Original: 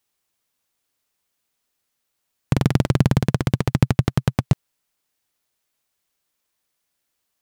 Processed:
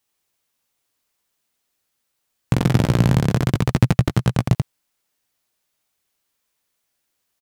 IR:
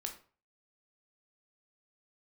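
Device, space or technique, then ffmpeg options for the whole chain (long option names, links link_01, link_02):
slapback doubling: -filter_complex "[0:a]asplit=3[link_01][link_02][link_03];[link_02]adelay=17,volume=-8dB[link_04];[link_03]adelay=86,volume=-4.5dB[link_05];[link_01][link_04][link_05]amix=inputs=3:normalize=0"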